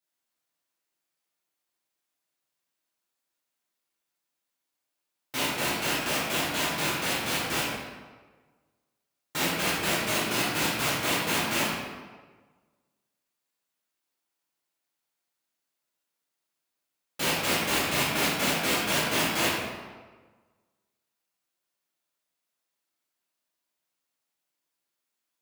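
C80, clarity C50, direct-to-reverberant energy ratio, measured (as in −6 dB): 2.0 dB, −0.5 dB, −9.0 dB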